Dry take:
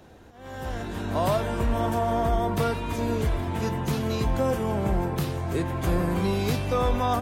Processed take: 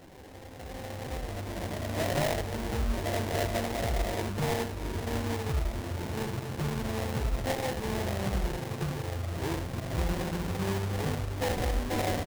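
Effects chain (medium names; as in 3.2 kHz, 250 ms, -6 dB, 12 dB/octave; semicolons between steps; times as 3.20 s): time stretch by phase-locked vocoder 1.7×; reverse echo 483 ms -11.5 dB; in parallel at +2 dB: compression, threshold -40 dBFS, peak gain reduction 19.5 dB; on the sum: reverb removal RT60 0.76 s; on a send: delay 82 ms -6.5 dB; on the sum: dynamic bell 280 Hz, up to -4 dB, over -37 dBFS, Q 1.2; sample-rate reducer 1.3 kHz, jitter 20%; trim -5.5 dB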